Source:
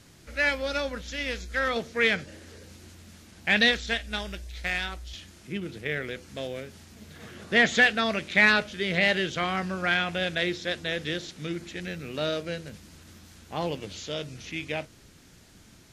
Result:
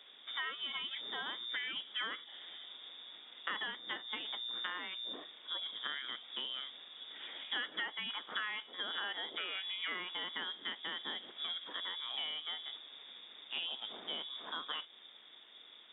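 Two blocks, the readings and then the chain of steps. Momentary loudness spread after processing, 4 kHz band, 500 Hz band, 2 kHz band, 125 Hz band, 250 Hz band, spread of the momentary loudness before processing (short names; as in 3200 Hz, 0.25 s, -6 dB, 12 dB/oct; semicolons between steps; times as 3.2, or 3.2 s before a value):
10 LU, -4.5 dB, -24.0 dB, -16.0 dB, under -30 dB, -24.0 dB, 17 LU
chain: compressor 6:1, threshold -34 dBFS, peak gain reduction 18 dB; inverted band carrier 3600 Hz; HPF 230 Hz 24 dB/oct; gain -3 dB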